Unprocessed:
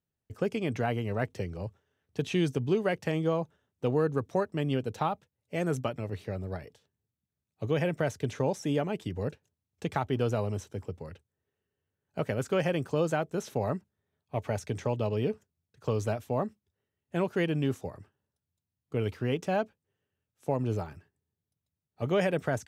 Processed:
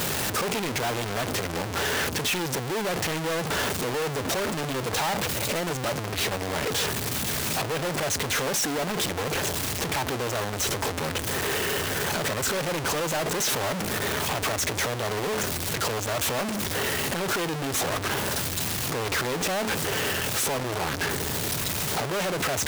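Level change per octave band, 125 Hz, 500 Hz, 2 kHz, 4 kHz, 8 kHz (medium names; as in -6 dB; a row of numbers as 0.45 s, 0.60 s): +0.5 dB, +2.0 dB, +12.0 dB, +17.5 dB, +23.0 dB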